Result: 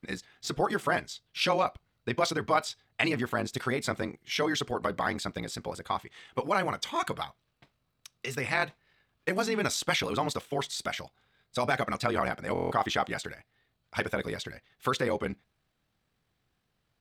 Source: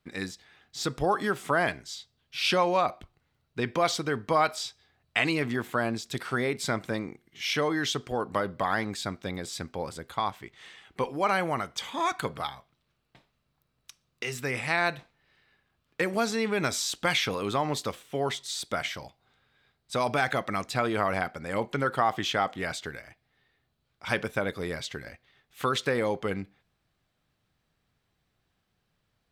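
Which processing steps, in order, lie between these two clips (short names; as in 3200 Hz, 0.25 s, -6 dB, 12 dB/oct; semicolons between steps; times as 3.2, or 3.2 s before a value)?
granular stretch 0.58×, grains 43 ms; stuck buffer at 12.53, samples 1024, times 7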